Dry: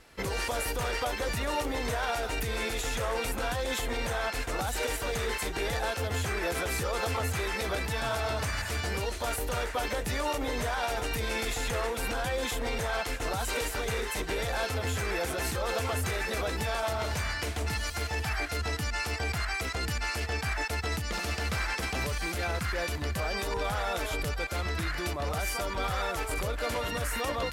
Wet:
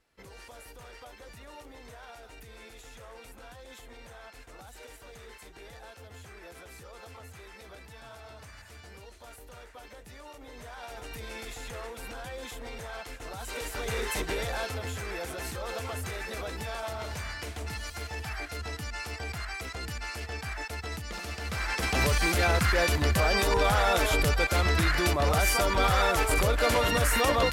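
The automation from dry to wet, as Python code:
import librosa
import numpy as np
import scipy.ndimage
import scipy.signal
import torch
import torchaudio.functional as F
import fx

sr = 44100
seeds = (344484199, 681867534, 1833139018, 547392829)

y = fx.gain(x, sr, db=fx.line((10.35, -17.0), (11.15, -9.0), (13.31, -9.0), (14.11, 2.0), (14.96, -5.0), (21.4, -5.0), (22.06, 7.0)))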